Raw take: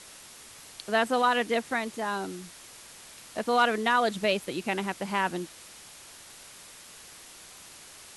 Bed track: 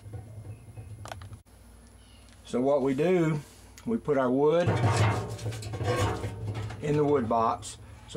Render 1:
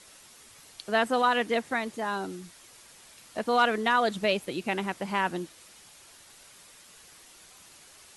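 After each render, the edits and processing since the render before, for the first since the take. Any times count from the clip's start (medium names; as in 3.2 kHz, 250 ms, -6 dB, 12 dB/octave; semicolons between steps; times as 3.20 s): noise reduction 6 dB, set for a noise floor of -49 dBFS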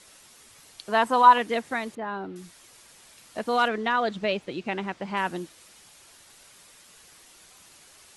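0.90–1.38 s: peaking EQ 990 Hz +13.5 dB 0.36 oct; 1.95–2.36 s: distance through air 380 m; 3.68–5.17 s: distance through air 100 m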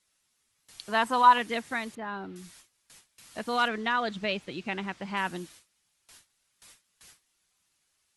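peaking EQ 510 Hz -6.5 dB 2.1 oct; gate with hold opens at -41 dBFS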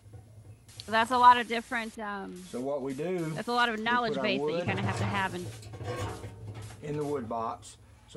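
add bed track -8 dB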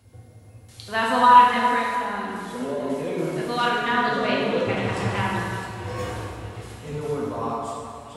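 feedback echo behind a high-pass 633 ms, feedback 73%, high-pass 2.9 kHz, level -14.5 dB; plate-style reverb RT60 2.5 s, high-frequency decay 0.55×, DRR -4.5 dB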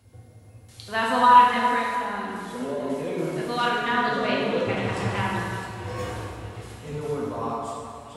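trim -1.5 dB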